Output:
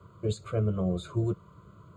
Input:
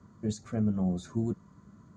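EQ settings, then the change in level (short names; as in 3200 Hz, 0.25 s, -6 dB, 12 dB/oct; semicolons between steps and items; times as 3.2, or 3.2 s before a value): HPF 66 Hz; bell 3000 Hz +2.5 dB 0.24 oct; fixed phaser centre 1200 Hz, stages 8; +8.5 dB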